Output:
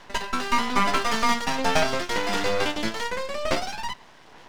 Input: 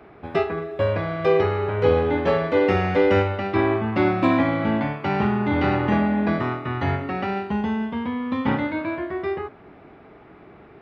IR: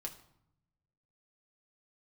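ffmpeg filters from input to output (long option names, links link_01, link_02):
-af "aphaser=in_gain=1:out_gain=1:delay=2.5:decay=0.28:speed=0.47:type=sinusoidal,asetrate=106281,aresample=44100,aeval=exprs='max(val(0),0)':channel_layout=same"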